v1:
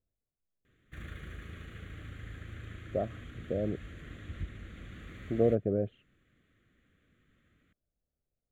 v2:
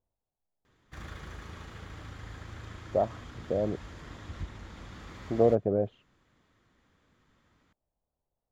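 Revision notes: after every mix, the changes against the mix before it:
master: remove static phaser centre 2.2 kHz, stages 4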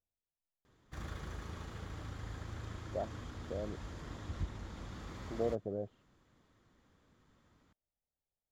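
speech -11.5 dB; master: add peaking EQ 2.2 kHz -5 dB 1.6 oct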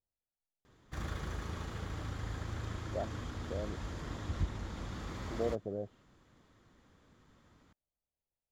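background +4.5 dB

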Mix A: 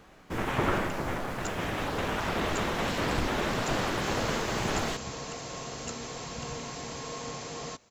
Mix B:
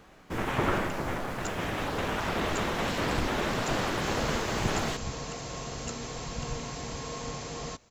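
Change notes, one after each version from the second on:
second sound: remove high-pass 160 Hz 6 dB/octave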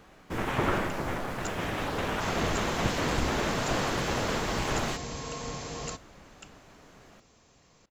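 second sound: entry -1.80 s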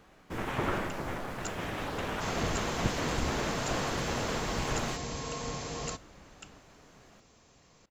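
speech -4.0 dB

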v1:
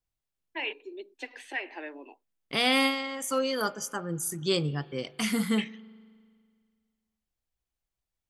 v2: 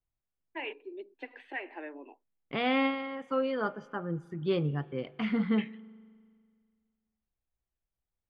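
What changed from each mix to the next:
second voice: add low-pass 4.4 kHz 12 dB/octave; master: add distance through air 480 m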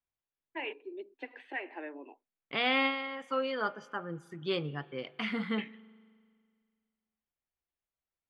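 second voice: add tilt EQ +3 dB/octave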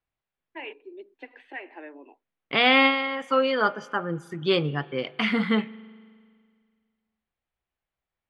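second voice +10.0 dB

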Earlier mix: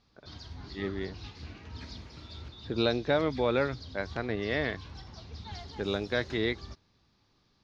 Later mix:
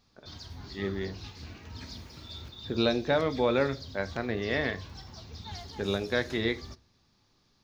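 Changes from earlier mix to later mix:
background: remove low-pass 5 kHz 12 dB/octave; reverb: on, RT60 0.30 s

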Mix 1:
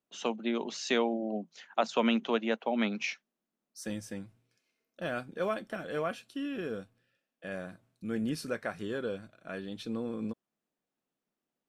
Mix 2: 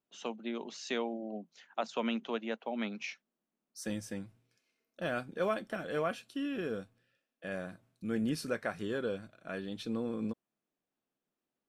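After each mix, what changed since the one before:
first voice -6.5 dB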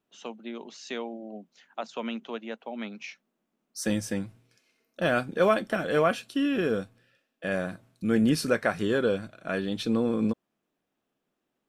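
second voice +10.0 dB

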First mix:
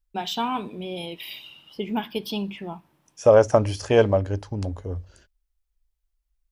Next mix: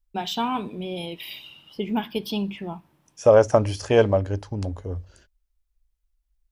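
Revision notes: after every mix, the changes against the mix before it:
first voice: add bass shelf 210 Hz +4.5 dB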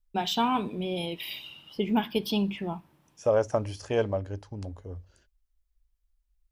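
second voice -9.0 dB

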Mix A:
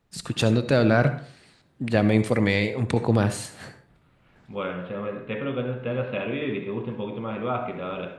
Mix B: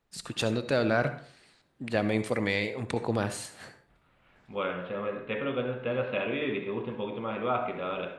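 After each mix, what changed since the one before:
first voice -4.0 dB; master: add peaking EQ 120 Hz -7.5 dB 2.4 oct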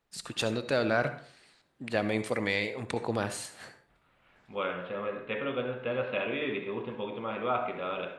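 master: add bass shelf 320 Hz -5 dB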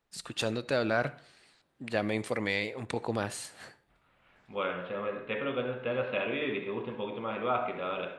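first voice: send -9.0 dB

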